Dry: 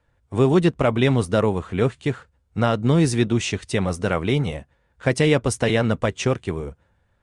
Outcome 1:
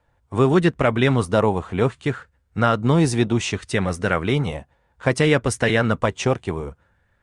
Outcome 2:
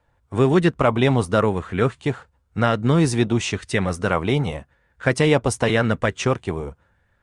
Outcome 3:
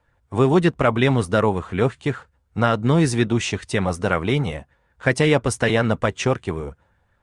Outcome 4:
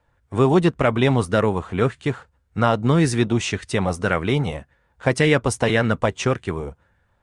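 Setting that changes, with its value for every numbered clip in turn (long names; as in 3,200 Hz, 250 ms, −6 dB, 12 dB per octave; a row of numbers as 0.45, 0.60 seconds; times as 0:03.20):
auto-filter bell, speed: 0.63, 0.92, 5.4, 1.8 Hertz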